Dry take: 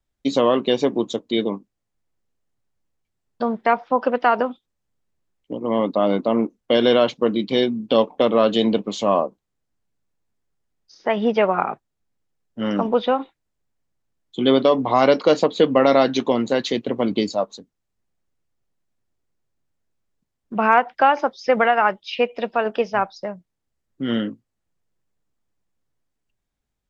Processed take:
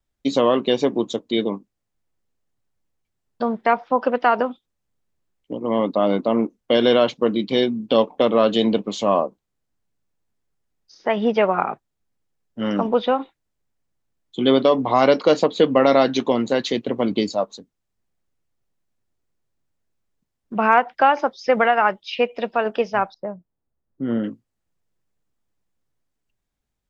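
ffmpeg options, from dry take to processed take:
-filter_complex "[0:a]asettb=1/sr,asplit=3[a][b][c];[a]atrim=end=23.144[d];[b]atrim=start=23.14:end=24.24,asetpts=PTS-STARTPTS,afade=t=in:d=0.004:c=qsin,afade=t=out:st=1.096:d=0.004:c=qsin,lowpass=1.1k[e];[c]atrim=start=24.236[f];[d][e]acrossfade=d=0.004:c1=hsin:c2=qsin[g];[g][f]acrossfade=d=0.004:c1=qsin:c2=hsin"

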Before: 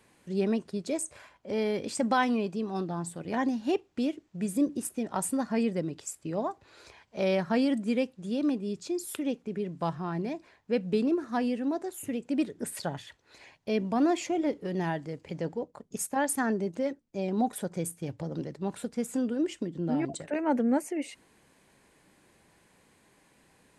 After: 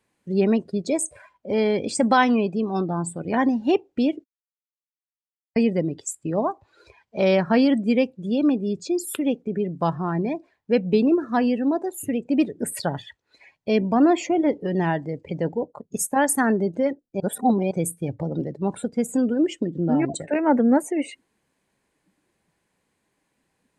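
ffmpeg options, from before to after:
-filter_complex "[0:a]asettb=1/sr,asplit=3[a][b][c];[a]atrim=end=13.954[d];[b]atrim=start=13.95:end=14.47,asetpts=PTS-STARTPTS,afade=t=in:d=0.004:c=qsin,afade=t=out:st=0.516:d=0.004:c=qsin,highshelf=f=3.7k:g=-4.5[e];[c]atrim=start=14.466[f];[d][e]acrossfade=d=0.004:c1=hsin:c2=qsin[g];[g][f]acrossfade=d=0.004:c1=qsin:c2=hsin,asplit=5[h][i][j][k][l];[h]atrim=end=4.24,asetpts=PTS-STARTPTS,afade=t=out:st=4.236:d=0.004:c=hsin[m];[i]atrim=start=4.24:end=5.56,asetpts=PTS-STARTPTS,volume=0[n];[j]atrim=start=5.56:end=17.202,asetpts=PTS-STARTPTS,afade=t=in:d=0.004:c=hsin[o];[k]atrim=start=17.198:end=17.712,asetpts=PTS-STARTPTS,areverse[p];[l]atrim=start=17.708[q];[m][n][o]concat=n=3:v=0:a=1[r];[r][p]acrossfade=d=0.004:c1=hsin:c2=hsin[s];[s][q]acrossfade=d=0.004:c1=hsin:c2=hsin,afftdn=nr=18:nf=-47,volume=8dB"

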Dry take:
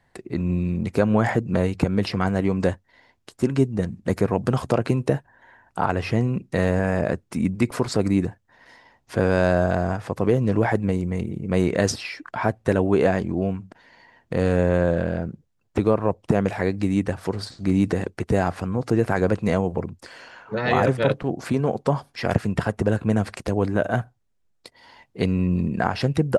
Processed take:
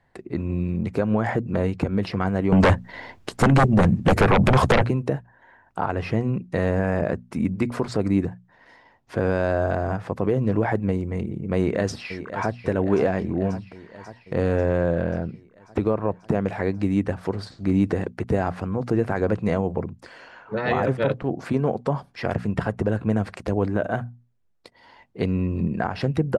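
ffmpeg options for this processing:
-filter_complex "[0:a]asettb=1/sr,asplit=3[a][b][c];[a]atrim=end=2.524[d];[b]atrim=start=2.52:end=4.85,asetpts=PTS-STARTPTS,afade=t=in:d=0.004:c=qsin,afade=t=out:st=2.326:d=0.004:c=qsin,aeval=exprs='0.531*sin(PI/2*5.62*val(0)/0.531)':c=same[e];[c]atrim=start=4.846[f];[d][e]acrossfade=d=0.004:c1=hsin:c2=qsin[g];[g][f]acrossfade=d=0.004:c1=qsin:c2=hsin,asplit=2[h][i];[i]afade=t=in:st=11.56:d=0.01,afade=t=out:st=12.54:d=0.01,aecho=0:1:540|1080|1620|2160|2700|3240|3780|4320|4860:0.223872|0.15671|0.109697|0.0767881|0.0537517|0.0376262|0.0263383|0.0184368|0.0129058[j];[h][j]amix=inputs=2:normalize=0,highshelf=f=4.2k:g=-11,bandreject=f=60:t=h:w=6,bandreject=f=120:t=h:w=6,bandreject=f=180:t=h:w=6,bandreject=f=240:t=h:w=6,alimiter=limit=-10dB:level=0:latency=1:release=132"

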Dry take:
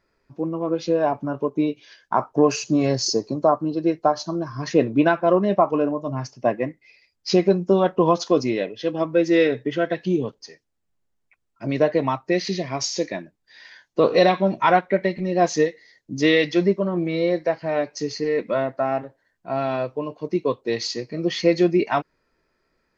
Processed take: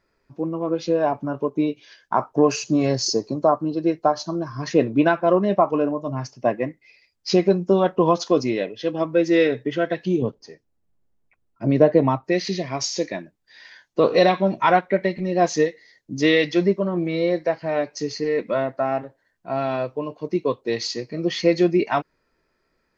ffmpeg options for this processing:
-filter_complex "[0:a]asettb=1/sr,asplit=3[a][b][c];[a]atrim=end=10.224[d];[b]atrim=start=10.22:end=12.24,asetpts=PTS-STARTPTS,afade=t=in:d=0.004:c=qsin,afade=t=out:st=2.016:d=0.004:c=qsin,tiltshelf=f=1.1k:g=6.5[e];[c]atrim=start=12.236[f];[d][e]acrossfade=d=0.004:c1=hsin:c2=qsin[g];[g][f]acrossfade=d=0.004:c1=qsin:c2=hsin"

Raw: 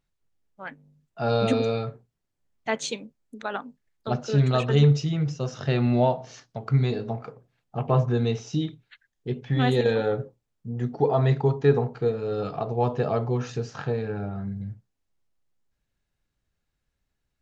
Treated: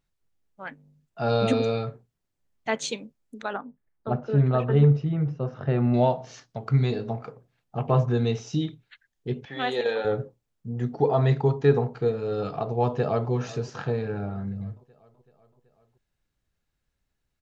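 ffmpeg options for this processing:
-filter_complex "[0:a]asettb=1/sr,asplit=3[a][b][c];[a]atrim=end=3.534[d];[b]atrim=start=3.53:end=5.94,asetpts=PTS-STARTPTS,afade=t=in:d=0.004:c=qsin,afade=t=out:st=2.406:d=0.004:c=qsin,lowpass=1.5k[e];[c]atrim=start=5.936[f];[d][e]acrossfade=d=0.004:c1=hsin:c2=qsin[g];[g][f]acrossfade=d=0.004:c1=qsin:c2=hsin,asettb=1/sr,asplit=3[h][i][j];[h]atrim=end=9.454[k];[i]atrim=start=9.45:end=10.05,asetpts=PTS-STARTPTS,afade=t=in:d=0.004:c=qsin,afade=t=out:st=0.596:d=0.004:c=qsin,highpass=470,lowpass=5.7k[l];[j]atrim=start=10.046[m];[k][l]acrossfade=d=0.004:c1=hsin:c2=qsin[n];[n][m]acrossfade=d=0.004:c1=qsin:c2=hsin,asplit=2[o][p];[p]afade=t=in:st=12.86:d=0.01,afade=t=out:st=13.31:d=0.01,aecho=0:1:380|760|1140|1520|1900|2280|2660:0.133352|0.0866789|0.0563413|0.0366218|0.0238042|0.0154727|0.0100573[q];[o][q]amix=inputs=2:normalize=0"

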